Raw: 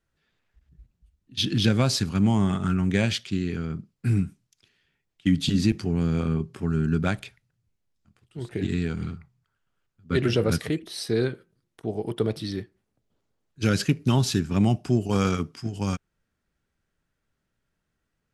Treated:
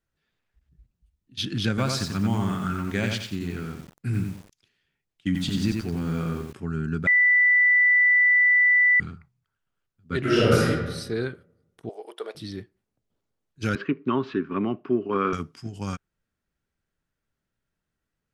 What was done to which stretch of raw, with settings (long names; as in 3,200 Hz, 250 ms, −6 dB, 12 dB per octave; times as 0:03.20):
0:01.69–0:06.53: feedback echo at a low word length 90 ms, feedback 35%, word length 7 bits, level −4 dB
0:07.07–0:09.00: beep over 1,980 Hz −13 dBFS
0:10.21–0:10.65: thrown reverb, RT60 1.2 s, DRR −8.5 dB
0:11.89–0:12.35: high-pass filter 460 Hz 24 dB per octave
0:13.75–0:15.33: loudspeaker in its box 230–2,800 Hz, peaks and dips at 270 Hz +7 dB, 390 Hz +9 dB, 770 Hz −6 dB, 1,100 Hz +10 dB
whole clip: dynamic equaliser 1,400 Hz, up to +6 dB, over −44 dBFS, Q 1.6; level −4.5 dB